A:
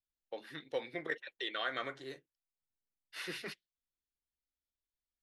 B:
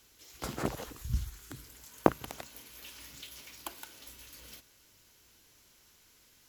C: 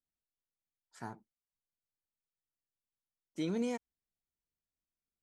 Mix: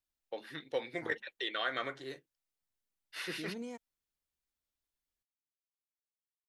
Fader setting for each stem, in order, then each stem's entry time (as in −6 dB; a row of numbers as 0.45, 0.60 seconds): +2.0 dB, muted, −8.5 dB; 0.00 s, muted, 0.00 s